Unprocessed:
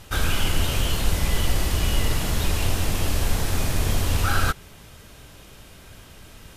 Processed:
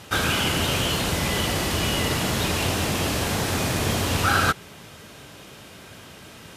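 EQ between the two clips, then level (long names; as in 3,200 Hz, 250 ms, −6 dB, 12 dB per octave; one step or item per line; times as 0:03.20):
high-pass filter 130 Hz 12 dB per octave
high-shelf EQ 9,100 Hz −7 dB
+5.0 dB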